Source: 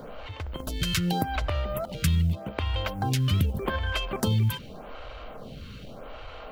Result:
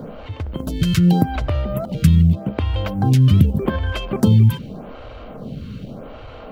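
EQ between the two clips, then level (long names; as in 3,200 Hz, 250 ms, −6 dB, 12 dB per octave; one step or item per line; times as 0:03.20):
parametric band 180 Hz +14 dB 2.9 octaves
0.0 dB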